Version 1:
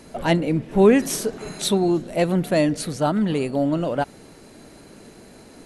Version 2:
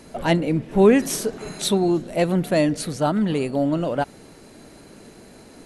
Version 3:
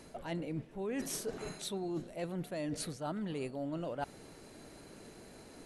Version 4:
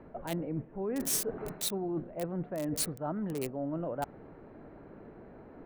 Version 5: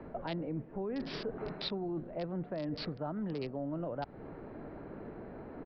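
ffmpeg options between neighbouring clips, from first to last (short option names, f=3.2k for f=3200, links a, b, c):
-af anull
-af "equalizer=f=220:w=2.1:g=-3,areverse,acompressor=threshold=-28dB:ratio=12,areverse,volume=-7dB"
-filter_complex "[0:a]acrossover=split=450|1700[a][b][c];[c]acrusher=bits=6:mix=0:aa=0.000001[d];[a][b][d]amix=inputs=3:normalize=0,crystalizer=i=1:c=0,volume=3.5dB"
-filter_complex "[0:a]acrossover=split=140|4000[a][b][c];[a]acompressor=threshold=-53dB:ratio=4[d];[b]acompressor=threshold=-41dB:ratio=4[e];[c]acompressor=threshold=-41dB:ratio=4[f];[d][e][f]amix=inputs=3:normalize=0,aresample=11025,aresample=44100,volume=4.5dB"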